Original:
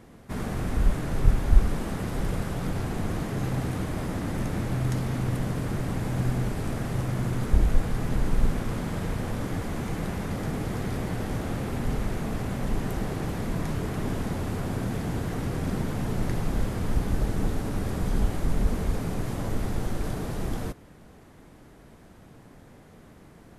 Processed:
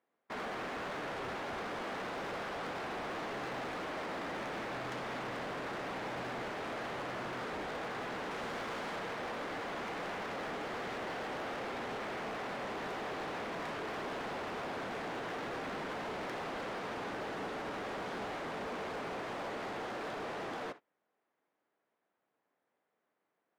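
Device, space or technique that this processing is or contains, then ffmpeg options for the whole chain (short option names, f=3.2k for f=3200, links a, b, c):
walkie-talkie: -filter_complex "[0:a]asettb=1/sr,asplit=3[a][b][c];[a]atrim=end=8.314[d];[b]atrim=start=8.31:end=8.96,asetpts=PTS-STARTPTS,afade=t=in:d=0.004:c=qsin,afade=t=out:st=0.646:d=0.004:c=qsin,highshelf=f=4.2k:g=5.5[e];[c]atrim=start=8.956[f];[d][e]acrossfade=d=0.004:c1=hsin:c2=qsin[g];[g][f]acrossfade=d=0.004:c1=qsin:c2=hsin,highpass=540,lowpass=3k,asoftclip=type=hard:threshold=-40dB,agate=range=-28dB:threshold=-50dB:ratio=16:detection=peak,volume=3dB"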